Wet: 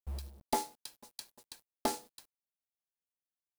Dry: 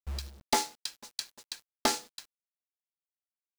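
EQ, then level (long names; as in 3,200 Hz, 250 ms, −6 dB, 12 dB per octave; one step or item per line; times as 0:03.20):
flat-topped bell 3,000 Hz −8.5 dB 2.9 octaves
−3.0 dB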